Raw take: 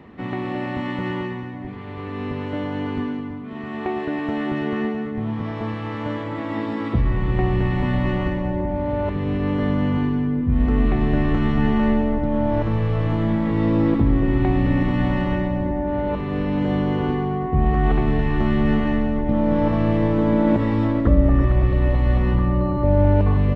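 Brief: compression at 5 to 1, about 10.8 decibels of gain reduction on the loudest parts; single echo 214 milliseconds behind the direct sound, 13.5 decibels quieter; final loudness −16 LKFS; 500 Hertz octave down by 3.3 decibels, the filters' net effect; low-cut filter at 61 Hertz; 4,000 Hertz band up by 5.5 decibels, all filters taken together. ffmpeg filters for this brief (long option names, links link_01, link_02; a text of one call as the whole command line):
ffmpeg -i in.wav -af "highpass=61,equalizer=frequency=500:width_type=o:gain=-4.5,equalizer=frequency=4000:width_type=o:gain=8.5,acompressor=threshold=-26dB:ratio=5,aecho=1:1:214:0.211,volume=13.5dB" out.wav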